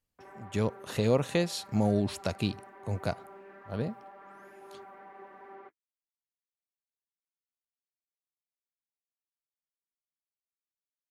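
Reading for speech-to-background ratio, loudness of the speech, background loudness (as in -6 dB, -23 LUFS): 19.5 dB, -31.0 LUFS, -50.5 LUFS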